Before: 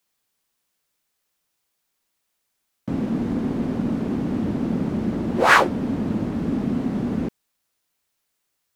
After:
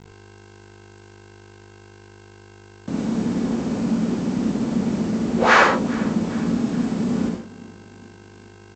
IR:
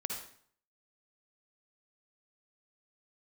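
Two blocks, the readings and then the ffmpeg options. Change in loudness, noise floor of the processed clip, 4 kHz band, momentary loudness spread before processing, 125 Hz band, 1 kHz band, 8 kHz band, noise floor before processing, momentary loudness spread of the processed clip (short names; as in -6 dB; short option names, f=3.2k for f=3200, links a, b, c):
+1.5 dB, -46 dBFS, +1.5 dB, 11 LU, 0.0 dB, +1.5 dB, +2.5 dB, -76 dBFS, 12 LU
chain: -filter_complex "[0:a]highpass=44,acrossover=split=140|3900[a][b][c];[a]alimiter=level_in=12dB:limit=-24dB:level=0:latency=1:release=93,volume=-12dB[d];[d][b][c]amix=inputs=3:normalize=0,aeval=exprs='val(0)+0.00631*(sin(2*PI*50*n/s)+sin(2*PI*2*50*n/s)/2+sin(2*PI*3*50*n/s)/3+sin(2*PI*4*50*n/s)/4+sin(2*PI*5*50*n/s)/5)':c=same,aresample=16000,acrusher=bits=6:mix=0:aa=0.000001,aresample=44100,aecho=1:1:406|812|1218|1624:0.0944|0.0519|0.0286|0.0157[e];[1:a]atrim=start_sample=2205,afade=t=out:st=0.24:d=0.01,atrim=end_sample=11025[f];[e][f]afir=irnorm=-1:irlink=0"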